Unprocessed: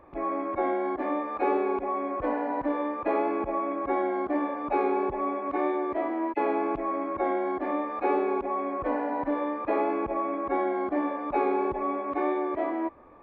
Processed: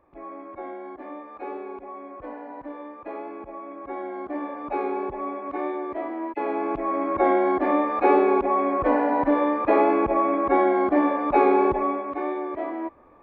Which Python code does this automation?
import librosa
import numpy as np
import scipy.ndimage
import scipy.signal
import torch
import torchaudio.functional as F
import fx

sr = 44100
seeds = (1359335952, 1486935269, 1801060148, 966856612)

y = fx.gain(x, sr, db=fx.line((3.6, -9.0), (4.59, -1.5), (6.39, -1.5), (7.25, 7.5), (11.72, 7.5), (12.16, -1.0)))